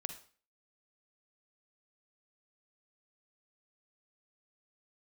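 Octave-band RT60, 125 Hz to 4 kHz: 0.40, 0.45, 0.40, 0.40, 0.40, 0.40 s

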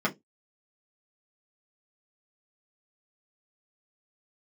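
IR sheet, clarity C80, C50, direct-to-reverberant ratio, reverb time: 32.5 dB, 21.0 dB, -5.0 dB, 0.15 s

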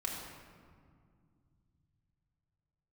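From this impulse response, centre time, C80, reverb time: 81 ms, 2.5 dB, 2.1 s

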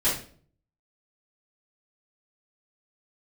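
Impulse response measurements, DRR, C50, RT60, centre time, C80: -13.0 dB, 4.5 dB, 0.45 s, 36 ms, 11.0 dB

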